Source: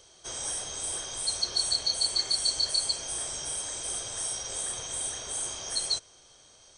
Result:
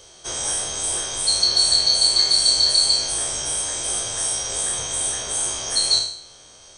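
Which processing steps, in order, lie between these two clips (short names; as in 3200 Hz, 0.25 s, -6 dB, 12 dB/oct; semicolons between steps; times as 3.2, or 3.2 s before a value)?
spectral trails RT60 0.61 s; gain +7.5 dB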